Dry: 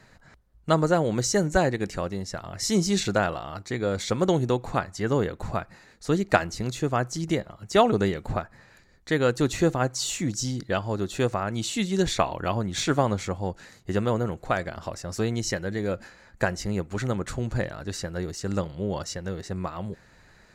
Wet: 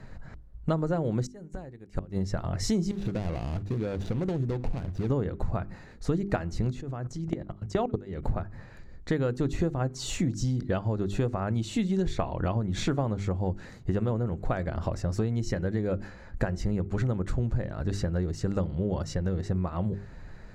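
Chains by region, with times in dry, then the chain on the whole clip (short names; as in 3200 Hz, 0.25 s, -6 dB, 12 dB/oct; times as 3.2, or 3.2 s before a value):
1.26–2.18 bell 9800 Hz +7 dB 0.48 oct + flipped gate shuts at -18 dBFS, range -27 dB
2.91–5.1 median filter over 41 samples + bell 5200 Hz +8 dB 2.7 oct + compressor 4:1, threshold -33 dBFS
6.71–8.23 Bessel low-pass 9600 Hz + level quantiser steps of 21 dB
whole clip: tilt -3 dB/oct; notches 50/100/150/200/250/300/350/400 Hz; compressor 6:1, threshold -27 dBFS; gain +2.5 dB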